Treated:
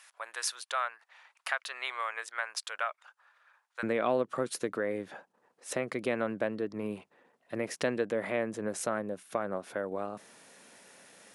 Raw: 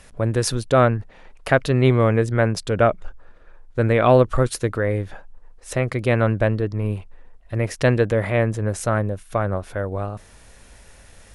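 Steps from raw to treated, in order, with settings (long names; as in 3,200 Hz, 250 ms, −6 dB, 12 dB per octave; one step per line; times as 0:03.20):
high-pass filter 940 Hz 24 dB per octave, from 0:03.83 190 Hz
downward compressor 2 to 1, threshold −27 dBFS, peak gain reduction 10 dB
level −4.5 dB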